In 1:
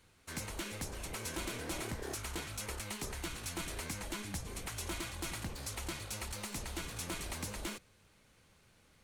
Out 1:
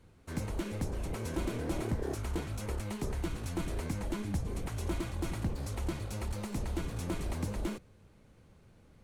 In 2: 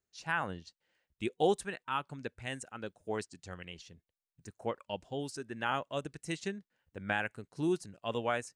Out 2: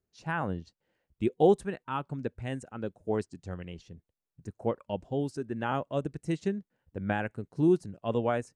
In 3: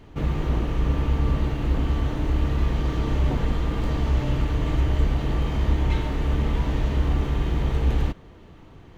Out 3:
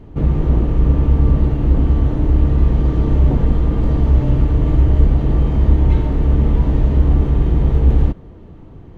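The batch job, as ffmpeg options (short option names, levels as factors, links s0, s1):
-af "tiltshelf=f=970:g=8,volume=1.19"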